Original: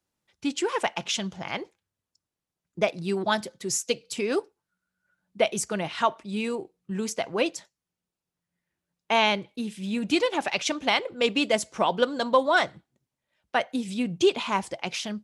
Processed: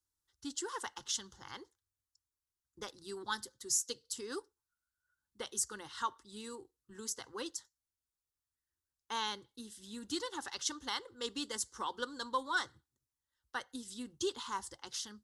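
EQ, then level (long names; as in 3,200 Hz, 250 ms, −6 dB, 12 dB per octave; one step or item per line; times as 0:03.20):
guitar amp tone stack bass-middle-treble 5-5-5
low-shelf EQ 150 Hz +11 dB
phaser with its sweep stopped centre 650 Hz, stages 6
+3.5 dB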